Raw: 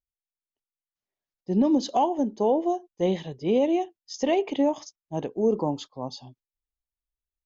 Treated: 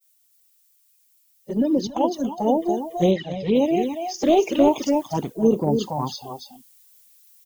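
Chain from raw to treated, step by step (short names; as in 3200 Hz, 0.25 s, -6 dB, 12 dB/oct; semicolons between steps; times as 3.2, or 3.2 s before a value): bin magnitudes rounded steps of 30 dB; added noise violet -48 dBFS; spectral noise reduction 11 dB; expander -56 dBFS; on a send: echo 0.283 s -7.5 dB; on the sum: vocal rider within 4 dB 0.5 s; 3.11–3.55 LPF 5900 Hz 24 dB/oct; 4.25–5.14 sample leveller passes 1; envelope flanger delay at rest 5.4 ms, full sweep at -19 dBFS; 1.87–2.38 three-band expander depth 100%; gain +6 dB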